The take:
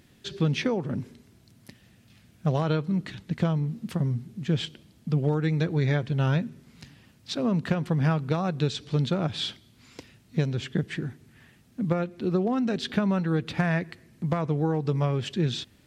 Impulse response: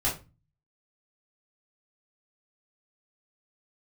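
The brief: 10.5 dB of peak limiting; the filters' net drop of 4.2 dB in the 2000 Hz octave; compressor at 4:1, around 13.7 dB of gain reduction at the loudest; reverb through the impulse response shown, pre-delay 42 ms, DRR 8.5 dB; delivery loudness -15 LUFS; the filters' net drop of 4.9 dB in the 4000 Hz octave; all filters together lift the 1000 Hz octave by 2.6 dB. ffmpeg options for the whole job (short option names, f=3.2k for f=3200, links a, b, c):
-filter_complex "[0:a]equalizer=f=1k:t=o:g=5.5,equalizer=f=2k:t=o:g=-7,equalizer=f=4k:t=o:g=-4,acompressor=threshold=-37dB:ratio=4,alimiter=level_in=9.5dB:limit=-24dB:level=0:latency=1,volume=-9.5dB,asplit=2[a][b];[1:a]atrim=start_sample=2205,adelay=42[c];[b][c]afir=irnorm=-1:irlink=0,volume=-17.5dB[d];[a][d]amix=inputs=2:normalize=0,volume=27.5dB"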